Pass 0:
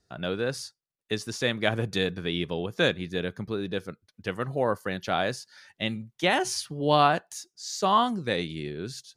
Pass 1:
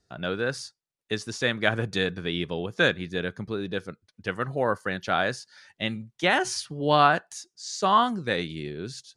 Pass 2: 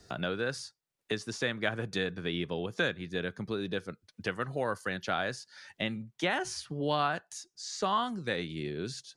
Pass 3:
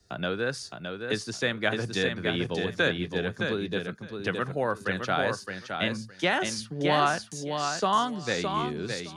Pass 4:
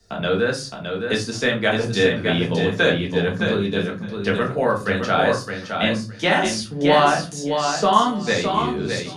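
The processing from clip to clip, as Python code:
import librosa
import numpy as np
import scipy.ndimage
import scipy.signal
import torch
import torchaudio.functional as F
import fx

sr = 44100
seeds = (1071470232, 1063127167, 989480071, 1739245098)

y1 = scipy.signal.sosfilt(scipy.signal.butter(4, 10000.0, 'lowpass', fs=sr, output='sos'), x)
y1 = fx.dynamic_eq(y1, sr, hz=1500.0, q=2.0, threshold_db=-42.0, ratio=4.0, max_db=6)
y2 = fx.band_squash(y1, sr, depth_pct=70)
y2 = y2 * librosa.db_to_amplitude(-6.5)
y3 = fx.echo_feedback(y2, sr, ms=615, feedback_pct=20, wet_db=-4.5)
y3 = fx.band_widen(y3, sr, depth_pct=40)
y3 = y3 * librosa.db_to_amplitude(4.0)
y4 = fx.room_shoebox(y3, sr, seeds[0], volume_m3=150.0, walls='furnished', distance_m=1.6)
y4 = y4 * librosa.db_to_amplitude(4.0)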